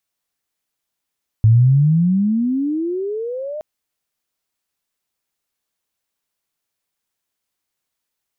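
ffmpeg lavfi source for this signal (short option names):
-f lavfi -i "aevalsrc='pow(10,(-7-17.5*t/2.17)/20)*sin(2*PI*107*2.17/(30.5*log(2)/12)*(exp(30.5*log(2)/12*t/2.17)-1))':d=2.17:s=44100"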